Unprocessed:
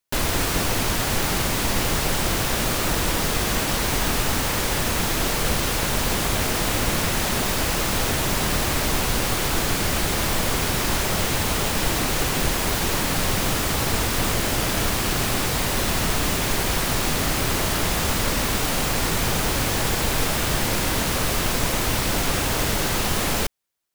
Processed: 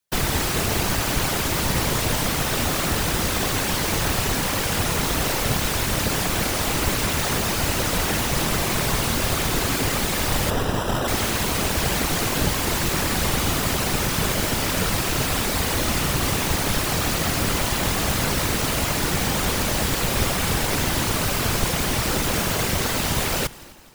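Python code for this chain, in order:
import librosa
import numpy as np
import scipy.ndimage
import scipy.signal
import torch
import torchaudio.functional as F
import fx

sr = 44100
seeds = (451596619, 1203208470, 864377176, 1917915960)

y = fx.sample_hold(x, sr, seeds[0], rate_hz=2200.0, jitter_pct=0, at=(10.5, 11.08))
y = fx.echo_heads(y, sr, ms=85, heads='second and third', feedback_pct=52, wet_db=-22.5)
y = fx.whisperise(y, sr, seeds[1])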